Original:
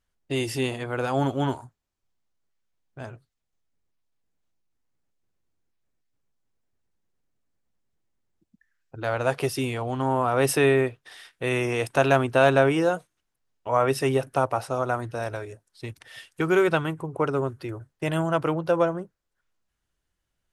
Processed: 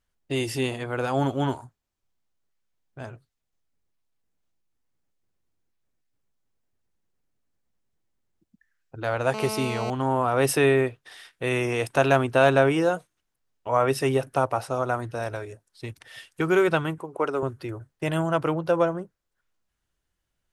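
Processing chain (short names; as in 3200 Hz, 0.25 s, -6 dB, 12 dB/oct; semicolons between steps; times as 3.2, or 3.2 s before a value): 9.34–9.9 GSM buzz -32 dBFS; 16.98–17.43 HPF 300 Hz 12 dB/oct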